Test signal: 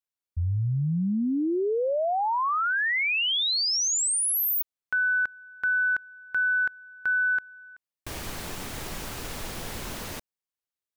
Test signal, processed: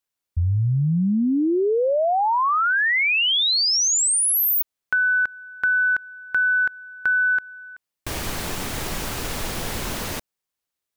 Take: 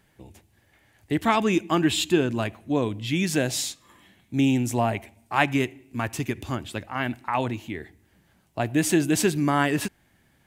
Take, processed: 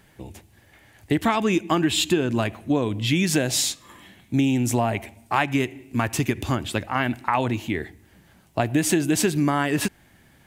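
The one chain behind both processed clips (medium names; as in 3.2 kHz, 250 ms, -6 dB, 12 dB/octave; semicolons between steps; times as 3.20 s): compression 6:1, threshold -25 dBFS; trim +7.5 dB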